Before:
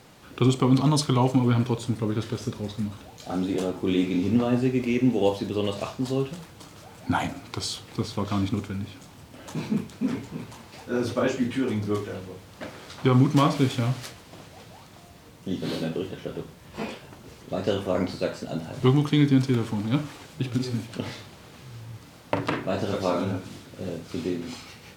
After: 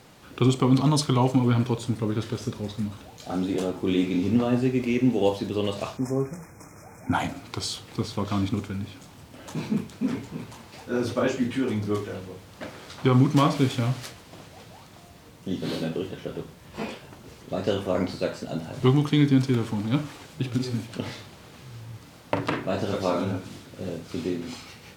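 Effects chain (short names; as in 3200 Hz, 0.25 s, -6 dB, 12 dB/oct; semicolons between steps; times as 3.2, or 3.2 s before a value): spectral delete 5.97–7.13, 2500–5100 Hz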